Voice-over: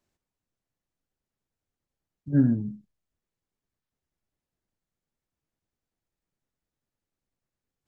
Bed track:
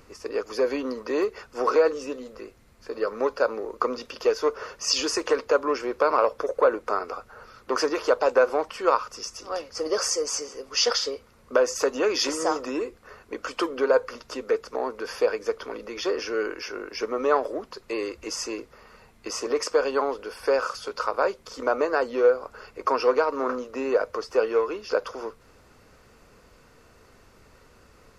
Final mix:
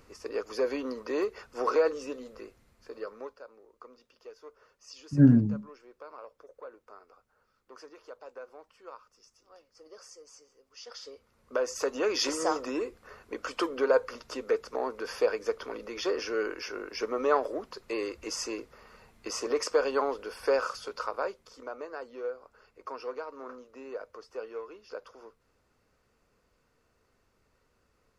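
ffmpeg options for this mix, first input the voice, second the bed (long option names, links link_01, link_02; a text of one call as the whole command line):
ffmpeg -i stem1.wav -i stem2.wav -filter_complex "[0:a]adelay=2850,volume=2.5dB[link_01];[1:a]volume=17dB,afade=type=out:start_time=2.44:duration=0.98:silence=0.0944061,afade=type=in:start_time=10.86:duration=1.42:silence=0.0794328,afade=type=out:start_time=20.55:duration=1.15:silence=0.223872[link_02];[link_01][link_02]amix=inputs=2:normalize=0" out.wav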